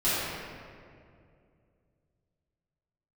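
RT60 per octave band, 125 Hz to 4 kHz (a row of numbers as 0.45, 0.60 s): 3.4, 2.9, 2.6, 2.0, 1.8, 1.3 s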